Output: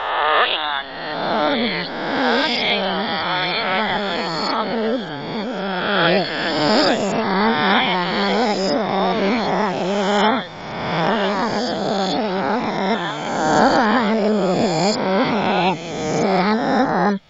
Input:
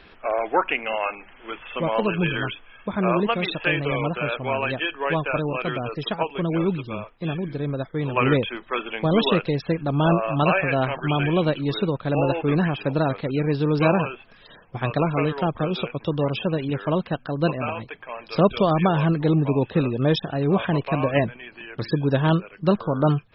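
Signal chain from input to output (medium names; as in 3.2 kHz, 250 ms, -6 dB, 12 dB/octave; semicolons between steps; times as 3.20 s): reverse spectral sustain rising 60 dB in 2.33 s; speed mistake 33 rpm record played at 45 rpm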